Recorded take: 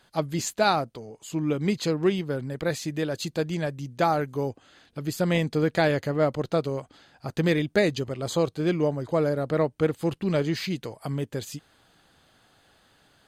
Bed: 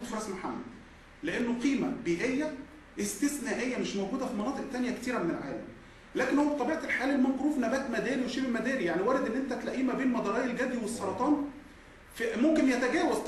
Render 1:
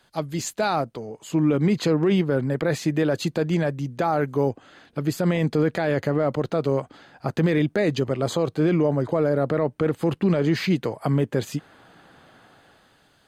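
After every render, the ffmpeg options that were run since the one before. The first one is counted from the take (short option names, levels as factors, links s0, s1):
-filter_complex "[0:a]acrossover=split=110|2400[s0][s1][s2];[s1]dynaudnorm=f=130:g=13:m=3.76[s3];[s0][s3][s2]amix=inputs=3:normalize=0,alimiter=limit=0.237:level=0:latency=1:release=26"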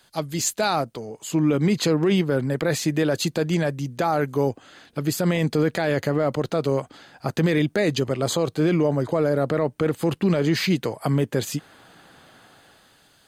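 -af "highshelf=f=3700:g=9.5"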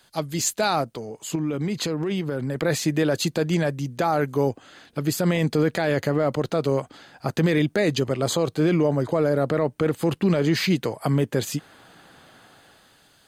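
-filter_complex "[0:a]asettb=1/sr,asplit=3[s0][s1][s2];[s0]atrim=end=1.354[s3];[s1]atrim=start=1.35:end=2.56,asetpts=PTS-STARTPTS,afade=t=in:d=0.004:c=qsin,afade=t=out:st=1.206:d=0.004:c=qsin,acompressor=threshold=0.0708:ratio=4:attack=3.2:release=140:knee=1:detection=peak[s4];[s2]atrim=start=2.556[s5];[s3][s4]acrossfade=d=0.004:c1=hsin:c2=qsin[s6];[s6][s5]acrossfade=d=0.004:c1=qsin:c2=hsin"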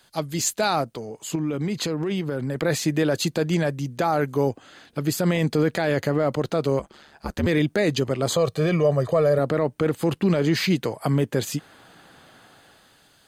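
-filter_complex "[0:a]asettb=1/sr,asplit=3[s0][s1][s2];[s0]atrim=end=6.794[s3];[s1]atrim=start=6.79:end=7.47,asetpts=PTS-STARTPTS,afade=t=in:d=0.004:c=qsin,afade=t=out:st=0.676:d=0.004:c=qsin,aeval=exprs='val(0)*sin(2*PI*73*n/s)':c=same[s4];[s2]atrim=start=7.466[s5];[s3][s4]acrossfade=d=0.004:c1=hsin:c2=qsin[s6];[s6][s5]acrossfade=d=0.004:c1=qsin:c2=hsin,asettb=1/sr,asplit=3[s7][s8][s9];[s7]atrim=end=8.364[s10];[s8]atrim=start=8.36:end=9.39,asetpts=PTS-STARTPTS,afade=t=in:d=0.004:c=qsin,afade=t=out:st=1.026:d=0.004:c=qsin,aecho=1:1:1.7:0.65,atrim=end_sample=45423[s11];[s9]atrim=start=9.386[s12];[s10][s11]acrossfade=d=0.004:c1=hsin:c2=qsin[s13];[s13][s12]acrossfade=d=0.004:c1=qsin:c2=hsin"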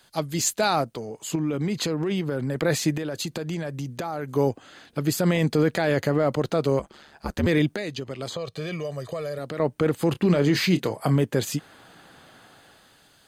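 -filter_complex "[0:a]asettb=1/sr,asplit=3[s0][s1][s2];[s0]atrim=end=2.974[s3];[s1]atrim=start=2.97:end=4.31,asetpts=PTS-STARTPTS,afade=t=in:d=0.004:c=qsin,afade=t=out:st=1.336:d=0.004:c=qsin,acompressor=threshold=0.0501:ratio=6:attack=3.2:release=140:knee=1:detection=peak[s4];[s2]atrim=start=4.306[s5];[s3][s4]acrossfade=d=0.004:c1=hsin:c2=qsin[s6];[s6][s5]acrossfade=d=0.004:c1=qsin:c2=hsin,asettb=1/sr,asplit=3[s7][s8][s9];[s7]atrim=end=7.724[s10];[s8]atrim=start=7.72:end=9.6,asetpts=PTS-STARTPTS,afade=t=in:d=0.004:c=qsin,afade=t=out:st=1.876:d=0.004:c=qsin,acrossover=split=2300|5600[s11][s12][s13];[s11]acompressor=threshold=0.0282:ratio=4[s14];[s12]acompressor=threshold=0.0141:ratio=4[s15];[s13]acompressor=threshold=0.002:ratio=4[s16];[s14][s15][s16]amix=inputs=3:normalize=0[s17];[s9]atrim=start=9.596[s18];[s10][s17]acrossfade=d=0.004:c1=hsin:c2=qsin[s19];[s19][s18]acrossfade=d=0.004:c1=qsin:c2=hsin,asettb=1/sr,asplit=3[s20][s21][s22];[s20]atrim=end=10.124[s23];[s21]atrim=start=10.12:end=11.16,asetpts=PTS-STARTPTS,afade=t=in:d=0.004:c=qsin,afade=t=out:st=1.036:d=0.004:c=qsin,asplit=2[s24][s25];[s25]adelay=28,volume=0.251[s26];[s24][s26]amix=inputs=2:normalize=0,atrim=end_sample=45864[s27];[s22]atrim=start=11.156[s28];[s23][s27]acrossfade=d=0.004:c1=hsin:c2=qsin[s29];[s29][s28]acrossfade=d=0.004:c1=qsin:c2=hsin"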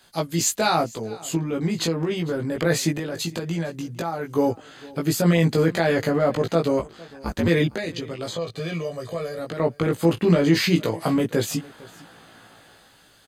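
-filter_complex "[0:a]asplit=2[s0][s1];[s1]adelay=18,volume=0.794[s2];[s0][s2]amix=inputs=2:normalize=0,aecho=1:1:455:0.0794"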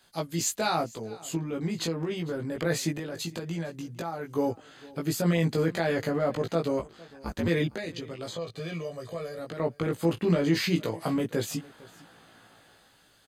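-af "volume=0.473"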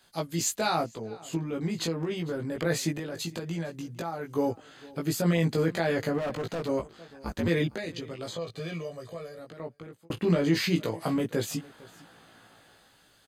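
-filter_complex "[0:a]asettb=1/sr,asplit=3[s0][s1][s2];[s0]atrim=end=0.864[s3];[s1]atrim=start=0.86:end=1.33,asetpts=PTS-STARTPTS,afade=t=in:d=0.004:c=qsin,afade=t=out:st=0.466:d=0.004:c=qsin,highshelf=f=5600:g=-10[s4];[s2]atrim=start=1.326[s5];[s3][s4]acrossfade=d=0.004:c1=hsin:c2=qsin[s6];[s6][s5]acrossfade=d=0.004:c1=qsin:c2=hsin,asettb=1/sr,asplit=3[s7][s8][s9];[s7]atrim=end=6.184[s10];[s8]atrim=start=6.18:end=6.69,asetpts=PTS-STARTPTS,afade=t=in:d=0.004:c=qsin,afade=t=out:st=0.506:d=0.004:c=qsin,asoftclip=type=hard:threshold=0.0376[s11];[s9]atrim=start=6.686[s12];[s10][s11]acrossfade=d=0.004:c1=hsin:c2=qsin[s13];[s13][s12]acrossfade=d=0.004:c1=qsin:c2=hsin,asplit=2[s14][s15];[s14]atrim=end=10.1,asetpts=PTS-STARTPTS,afade=t=out:st=8.65:d=1.45[s16];[s15]atrim=start=10.1,asetpts=PTS-STARTPTS,afade=t=in:d=0.004:c=hsin[s17];[s16][s17]concat=n=2:v=0:a=1"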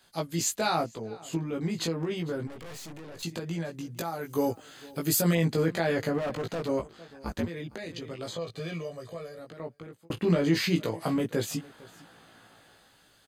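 -filter_complex "[0:a]asettb=1/sr,asplit=3[s0][s1][s2];[s0]atrim=end=2.474[s3];[s1]atrim=start=2.47:end=3.23,asetpts=PTS-STARTPTS,afade=t=in:d=0.004:c=qsin,afade=t=out:st=0.756:d=0.004:c=qsin,aeval=exprs='(tanh(126*val(0)+0.6)-tanh(0.6))/126':c=same[s4];[s2]atrim=start=3.226[s5];[s3][s4]acrossfade=d=0.004:c1=hsin:c2=qsin[s6];[s6][s5]acrossfade=d=0.004:c1=qsin:c2=hsin,asettb=1/sr,asplit=3[s7][s8][s9];[s7]atrim=end=3.974[s10];[s8]atrim=start=3.97:end=5.35,asetpts=PTS-STARTPTS,afade=t=in:d=0.004:c=qsin,afade=t=out:st=1.376:d=0.004:c=qsin,aemphasis=mode=production:type=50kf[s11];[s9]atrim=start=5.346[s12];[s10][s11]acrossfade=d=0.004:c1=hsin:c2=qsin[s13];[s13][s12]acrossfade=d=0.004:c1=qsin:c2=hsin,asettb=1/sr,asplit=3[s14][s15][s16];[s14]atrim=end=7.454[s17];[s15]atrim=start=7.45:end=8.07,asetpts=PTS-STARTPTS,afade=t=in:d=0.004:c=qsin,afade=t=out:st=0.616:d=0.004:c=qsin,acompressor=threshold=0.0224:ratio=12:attack=3.2:release=140:knee=1:detection=peak[s18];[s16]atrim=start=8.066[s19];[s17][s18]acrossfade=d=0.004:c1=hsin:c2=qsin[s20];[s20][s19]acrossfade=d=0.004:c1=qsin:c2=hsin"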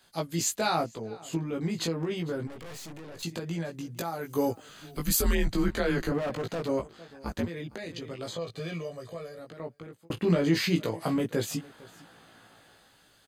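-filter_complex "[0:a]asettb=1/sr,asplit=3[s0][s1][s2];[s0]atrim=end=4.694[s3];[s1]atrim=start=4.69:end=6.12,asetpts=PTS-STARTPTS,afade=t=in:d=0.004:c=qsin,afade=t=out:st=1.426:d=0.004:c=qsin,afreqshift=-130[s4];[s2]atrim=start=6.116[s5];[s3][s4]acrossfade=d=0.004:c1=hsin:c2=qsin[s6];[s6][s5]acrossfade=d=0.004:c1=qsin:c2=hsin"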